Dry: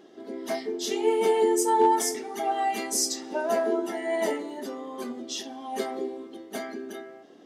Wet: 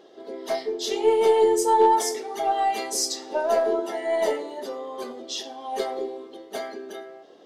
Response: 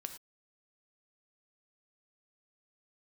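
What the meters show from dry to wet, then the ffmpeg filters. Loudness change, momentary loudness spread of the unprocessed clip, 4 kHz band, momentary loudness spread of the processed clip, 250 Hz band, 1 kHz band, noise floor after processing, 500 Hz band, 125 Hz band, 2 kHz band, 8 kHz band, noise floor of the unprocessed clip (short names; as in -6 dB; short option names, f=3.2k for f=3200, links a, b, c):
+3.0 dB, 16 LU, +3.0 dB, 17 LU, -2.0 dB, +3.5 dB, -49 dBFS, +4.0 dB, n/a, 0.0 dB, -0.5 dB, -50 dBFS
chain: -filter_complex "[0:a]equalizer=f=250:t=o:w=1:g=-6,equalizer=f=500:t=o:w=1:g=9,equalizer=f=1k:t=o:w=1:g=4,equalizer=f=4k:t=o:w=1:g=7,aeval=exprs='0.631*(cos(1*acos(clip(val(0)/0.631,-1,1)))-cos(1*PI/2))+0.0126*(cos(4*acos(clip(val(0)/0.631,-1,1)))-cos(4*PI/2))':c=same,asplit=2[a][b];[1:a]atrim=start_sample=2205[c];[b][c]afir=irnorm=-1:irlink=0,volume=-4.5dB[d];[a][d]amix=inputs=2:normalize=0,volume=-5.5dB"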